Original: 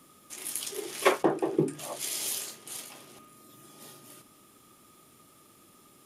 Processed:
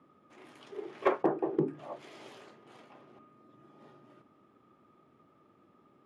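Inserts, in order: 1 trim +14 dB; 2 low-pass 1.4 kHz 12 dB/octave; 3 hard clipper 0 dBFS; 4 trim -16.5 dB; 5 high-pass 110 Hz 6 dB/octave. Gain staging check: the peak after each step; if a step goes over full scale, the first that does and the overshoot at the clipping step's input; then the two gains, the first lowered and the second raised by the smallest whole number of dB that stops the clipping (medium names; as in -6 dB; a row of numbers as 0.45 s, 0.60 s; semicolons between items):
+5.5 dBFS, +4.0 dBFS, 0.0 dBFS, -16.5 dBFS, -15.0 dBFS; step 1, 4.0 dB; step 1 +10 dB, step 4 -12.5 dB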